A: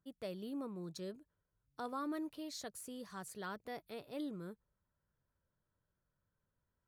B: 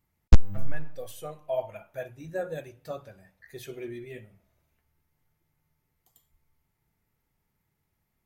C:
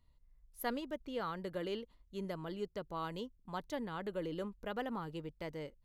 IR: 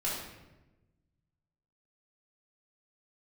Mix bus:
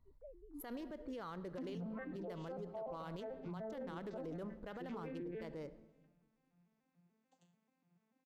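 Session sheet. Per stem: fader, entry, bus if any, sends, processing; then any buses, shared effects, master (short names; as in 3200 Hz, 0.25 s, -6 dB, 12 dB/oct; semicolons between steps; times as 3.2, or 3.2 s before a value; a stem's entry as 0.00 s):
-12.0 dB, 0.00 s, no send, sine-wave speech; LPF 1300 Hz 24 dB/oct
+0.5 dB, 1.25 s, send -19 dB, arpeggiated vocoder major triad, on F3, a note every 0.146 s; treble ducked by the level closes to 1200 Hz, closed at -33.5 dBFS
+0.5 dB, 0.00 s, send -21.5 dB, Wiener smoothing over 15 samples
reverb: on, RT60 1.1 s, pre-delay 3 ms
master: limiter -38 dBFS, peak gain reduction 22.5 dB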